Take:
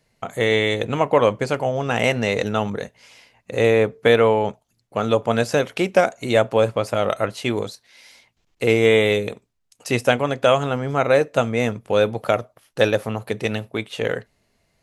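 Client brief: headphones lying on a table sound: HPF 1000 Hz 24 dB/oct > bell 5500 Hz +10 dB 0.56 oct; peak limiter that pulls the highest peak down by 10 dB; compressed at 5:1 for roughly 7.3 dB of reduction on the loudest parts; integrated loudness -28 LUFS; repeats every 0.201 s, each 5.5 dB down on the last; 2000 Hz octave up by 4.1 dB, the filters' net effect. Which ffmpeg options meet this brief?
-af "equalizer=f=2k:t=o:g=4.5,acompressor=threshold=-18dB:ratio=5,alimiter=limit=-13dB:level=0:latency=1,highpass=f=1k:w=0.5412,highpass=f=1k:w=1.3066,equalizer=f=5.5k:t=o:w=0.56:g=10,aecho=1:1:201|402|603|804|1005|1206|1407:0.531|0.281|0.149|0.079|0.0419|0.0222|0.0118,volume=2dB"

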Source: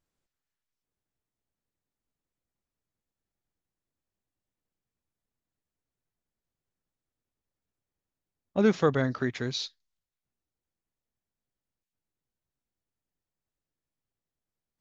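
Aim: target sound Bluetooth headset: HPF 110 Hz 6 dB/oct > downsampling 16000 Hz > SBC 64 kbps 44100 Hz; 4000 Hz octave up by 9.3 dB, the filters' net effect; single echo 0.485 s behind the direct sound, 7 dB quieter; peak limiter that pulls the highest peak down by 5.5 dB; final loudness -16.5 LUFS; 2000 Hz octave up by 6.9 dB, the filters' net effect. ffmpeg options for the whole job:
-af "equalizer=f=2k:t=o:g=7.5,equalizer=f=4k:t=o:g=8.5,alimiter=limit=-15dB:level=0:latency=1,highpass=f=110:p=1,aecho=1:1:485:0.447,aresample=16000,aresample=44100,volume=12dB" -ar 44100 -c:a sbc -b:a 64k

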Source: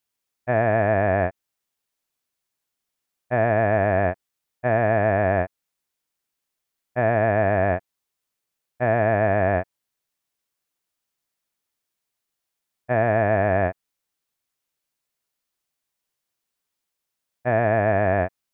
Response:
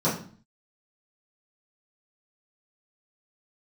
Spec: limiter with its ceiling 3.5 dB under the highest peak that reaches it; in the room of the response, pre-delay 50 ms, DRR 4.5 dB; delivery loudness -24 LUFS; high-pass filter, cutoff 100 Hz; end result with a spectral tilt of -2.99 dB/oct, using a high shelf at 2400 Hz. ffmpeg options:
-filter_complex "[0:a]highpass=100,highshelf=f=2.4k:g=3,alimiter=limit=-10.5dB:level=0:latency=1,asplit=2[a][b];[1:a]atrim=start_sample=2205,adelay=50[c];[b][c]afir=irnorm=-1:irlink=0,volume=-18dB[d];[a][d]amix=inputs=2:normalize=0,volume=-2dB"

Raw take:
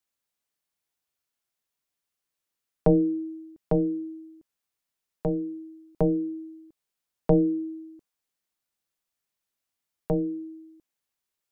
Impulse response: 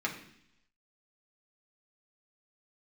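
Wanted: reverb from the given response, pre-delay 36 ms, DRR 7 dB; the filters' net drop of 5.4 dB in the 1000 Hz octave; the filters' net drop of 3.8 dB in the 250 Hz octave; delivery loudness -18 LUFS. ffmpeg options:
-filter_complex "[0:a]equalizer=f=250:t=o:g=-5.5,equalizer=f=1k:t=o:g=-7.5,asplit=2[a][b];[1:a]atrim=start_sample=2205,adelay=36[c];[b][c]afir=irnorm=-1:irlink=0,volume=-13dB[d];[a][d]amix=inputs=2:normalize=0,volume=12dB"

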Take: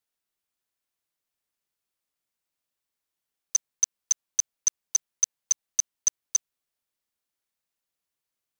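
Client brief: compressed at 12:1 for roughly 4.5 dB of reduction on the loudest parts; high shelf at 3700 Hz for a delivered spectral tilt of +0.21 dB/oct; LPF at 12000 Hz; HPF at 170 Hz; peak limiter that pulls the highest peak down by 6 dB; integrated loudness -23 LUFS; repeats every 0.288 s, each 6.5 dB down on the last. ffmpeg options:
-af "highpass=170,lowpass=12k,highshelf=f=3.7k:g=-6.5,acompressor=threshold=-27dB:ratio=12,alimiter=limit=-23dB:level=0:latency=1,aecho=1:1:288|576|864|1152|1440|1728:0.473|0.222|0.105|0.0491|0.0231|0.0109,volume=15.5dB"

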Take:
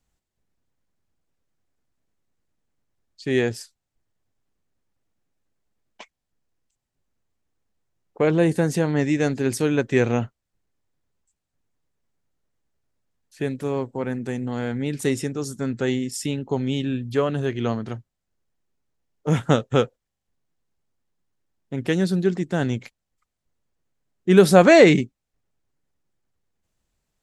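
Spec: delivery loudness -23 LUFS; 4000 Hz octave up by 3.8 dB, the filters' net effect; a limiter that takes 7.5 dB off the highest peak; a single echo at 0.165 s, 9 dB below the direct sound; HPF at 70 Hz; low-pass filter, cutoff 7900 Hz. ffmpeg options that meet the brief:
-af "highpass=70,lowpass=7.9k,equalizer=f=4k:t=o:g=5,alimiter=limit=-7dB:level=0:latency=1,aecho=1:1:165:0.355,volume=-0.5dB"

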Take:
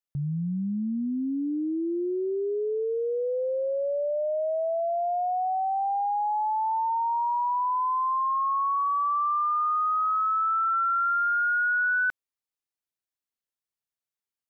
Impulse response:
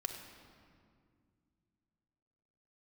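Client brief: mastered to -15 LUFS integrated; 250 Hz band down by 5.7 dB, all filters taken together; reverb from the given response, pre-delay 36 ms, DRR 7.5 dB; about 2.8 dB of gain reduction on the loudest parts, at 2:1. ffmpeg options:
-filter_complex "[0:a]equalizer=f=250:t=o:g=-8,acompressor=threshold=-29dB:ratio=2,asplit=2[a][b];[1:a]atrim=start_sample=2205,adelay=36[c];[b][c]afir=irnorm=-1:irlink=0,volume=-7.5dB[d];[a][d]amix=inputs=2:normalize=0,volume=13.5dB"

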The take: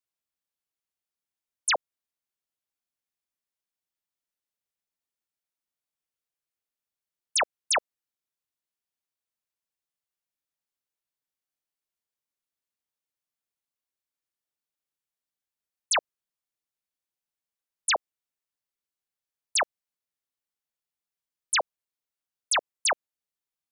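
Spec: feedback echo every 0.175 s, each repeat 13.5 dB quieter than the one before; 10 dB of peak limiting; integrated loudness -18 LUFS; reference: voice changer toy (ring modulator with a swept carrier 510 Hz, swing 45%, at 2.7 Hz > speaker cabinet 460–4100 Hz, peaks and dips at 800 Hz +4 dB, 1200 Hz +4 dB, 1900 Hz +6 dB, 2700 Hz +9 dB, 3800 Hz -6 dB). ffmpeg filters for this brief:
-af "alimiter=level_in=5dB:limit=-24dB:level=0:latency=1,volume=-5dB,aecho=1:1:175|350:0.211|0.0444,aeval=exprs='val(0)*sin(2*PI*510*n/s+510*0.45/2.7*sin(2*PI*2.7*n/s))':c=same,highpass=460,equalizer=f=800:t=q:w=4:g=4,equalizer=f=1.2k:t=q:w=4:g=4,equalizer=f=1.9k:t=q:w=4:g=6,equalizer=f=2.7k:t=q:w=4:g=9,equalizer=f=3.8k:t=q:w=4:g=-6,lowpass=f=4.1k:w=0.5412,lowpass=f=4.1k:w=1.3066,volume=20dB"

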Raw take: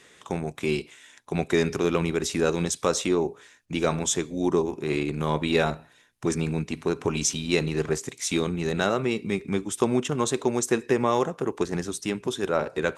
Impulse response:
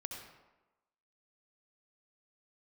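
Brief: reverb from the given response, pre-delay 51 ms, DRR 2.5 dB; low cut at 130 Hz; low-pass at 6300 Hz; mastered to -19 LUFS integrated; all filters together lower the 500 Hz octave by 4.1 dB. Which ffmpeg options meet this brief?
-filter_complex "[0:a]highpass=130,lowpass=6.3k,equalizer=f=500:t=o:g=-5.5,asplit=2[a][b];[1:a]atrim=start_sample=2205,adelay=51[c];[b][c]afir=irnorm=-1:irlink=0,volume=-1dB[d];[a][d]amix=inputs=2:normalize=0,volume=8dB"

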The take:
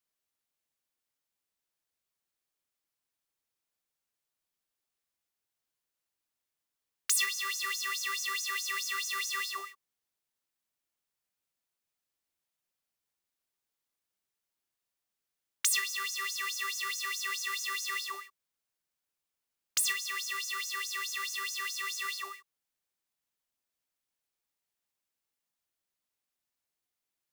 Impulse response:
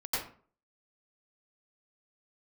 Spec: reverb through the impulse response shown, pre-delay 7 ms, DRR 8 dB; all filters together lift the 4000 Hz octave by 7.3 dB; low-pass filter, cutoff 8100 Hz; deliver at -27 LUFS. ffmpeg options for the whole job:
-filter_complex "[0:a]lowpass=8.1k,equalizer=f=4k:t=o:g=9,asplit=2[a][b];[1:a]atrim=start_sample=2205,adelay=7[c];[b][c]afir=irnorm=-1:irlink=0,volume=-14dB[d];[a][d]amix=inputs=2:normalize=0,volume=1dB"

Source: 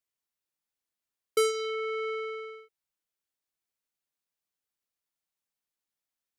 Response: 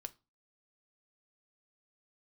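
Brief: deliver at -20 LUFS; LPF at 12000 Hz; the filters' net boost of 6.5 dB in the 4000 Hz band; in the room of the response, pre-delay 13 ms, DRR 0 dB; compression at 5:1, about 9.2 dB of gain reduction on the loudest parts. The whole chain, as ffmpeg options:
-filter_complex "[0:a]lowpass=12k,equalizer=f=4k:t=o:g=8.5,acompressor=threshold=-30dB:ratio=5,asplit=2[a][b];[1:a]atrim=start_sample=2205,adelay=13[c];[b][c]afir=irnorm=-1:irlink=0,volume=4dB[d];[a][d]amix=inputs=2:normalize=0,volume=12dB"

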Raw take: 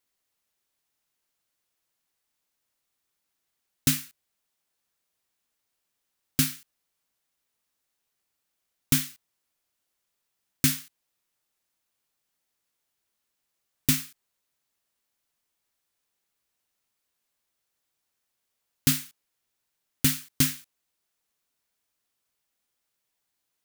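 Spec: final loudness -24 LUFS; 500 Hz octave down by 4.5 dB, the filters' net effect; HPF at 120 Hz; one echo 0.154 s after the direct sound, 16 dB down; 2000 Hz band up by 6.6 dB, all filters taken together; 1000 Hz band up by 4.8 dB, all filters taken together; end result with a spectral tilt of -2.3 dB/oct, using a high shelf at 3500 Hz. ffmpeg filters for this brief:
-af "highpass=120,equalizer=f=500:t=o:g=-8,equalizer=f=1k:t=o:g=4.5,equalizer=f=2k:t=o:g=9,highshelf=f=3.5k:g=-5,aecho=1:1:154:0.158,volume=4.5dB"

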